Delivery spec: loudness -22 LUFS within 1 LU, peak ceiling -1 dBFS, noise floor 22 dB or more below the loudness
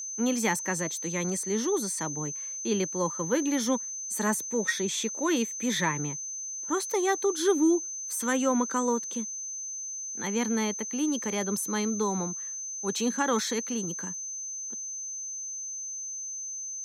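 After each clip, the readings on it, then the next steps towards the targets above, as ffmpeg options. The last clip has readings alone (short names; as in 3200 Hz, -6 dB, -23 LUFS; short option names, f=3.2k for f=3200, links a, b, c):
steady tone 6200 Hz; tone level -34 dBFS; loudness -29.0 LUFS; peak -13.0 dBFS; loudness target -22.0 LUFS
-> -af "bandreject=f=6.2k:w=30"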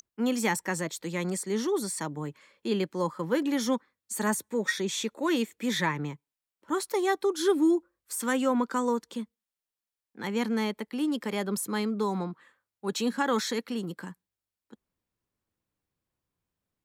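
steady tone none; loudness -29.5 LUFS; peak -13.0 dBFS; loudness target -22.0 LUFS
-> -af "volume=7.5dB"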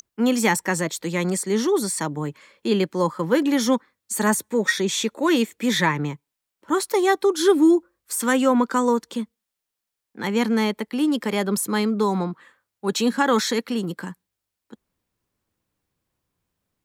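loudness -22.0 LUFS; peak -5.5 dBFS; noise floor -84 dBFS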